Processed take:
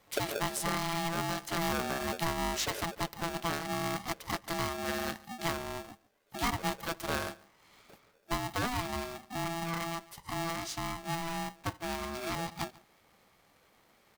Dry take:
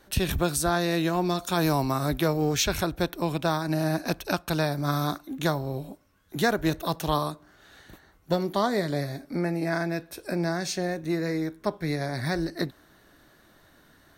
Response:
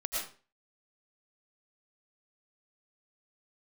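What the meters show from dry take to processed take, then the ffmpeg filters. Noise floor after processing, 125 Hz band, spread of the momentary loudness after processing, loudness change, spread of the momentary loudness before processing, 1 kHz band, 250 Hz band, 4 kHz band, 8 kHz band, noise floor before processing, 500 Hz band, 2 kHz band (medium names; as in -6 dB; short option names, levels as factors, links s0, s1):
-67 dBFS, -11.0 dB, 6 LU, -7.5 dB, 7 LU, -4.0 dB, -10.5 dB, -4.5 dB, -4.5 dB, -59 dBFS, -10.0 dB, -4.5 dB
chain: -af "aecho=1:1:142:0.0794,aeval=exprs='val(0)*sgn(sin(2*PI*500*n/s))':c=same,volume=0.398"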